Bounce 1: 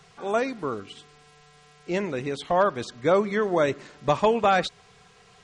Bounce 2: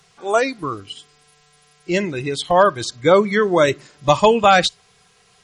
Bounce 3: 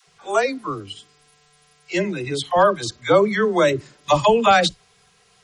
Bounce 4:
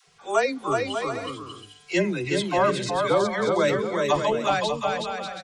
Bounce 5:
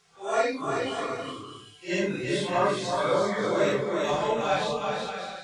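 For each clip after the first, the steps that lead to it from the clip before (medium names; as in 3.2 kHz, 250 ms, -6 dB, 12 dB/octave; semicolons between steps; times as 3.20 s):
spectral noise reduction 11 dB; treble shelf 3.2 kHz +8.5 dB; trim +7.5 dB
phase dispersion lows, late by 73 ms, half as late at 450 Hz; trim -2 dB
gain riding 0.5 s; on a send: bouncing-ball echo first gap 370 ms, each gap 0.6×, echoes 5; on the sum: trim -6 dB
phase randomisation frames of 200 ms; trim -3 dB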